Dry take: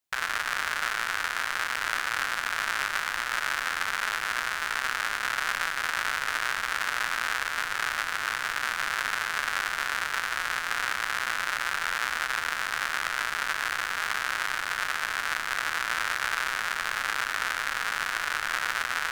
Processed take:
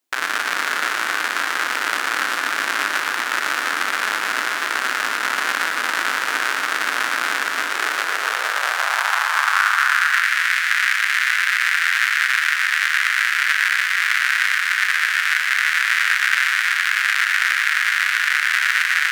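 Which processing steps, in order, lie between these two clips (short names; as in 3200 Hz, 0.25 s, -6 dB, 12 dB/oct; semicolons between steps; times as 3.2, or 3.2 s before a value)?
high-pass sweep 280 Hz -> 1900 Hz, 7.6–10.29; split-band echo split 1500 Hz, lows 0.265 s, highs 0.116 s, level -7.5 dB; gain +6.5 dB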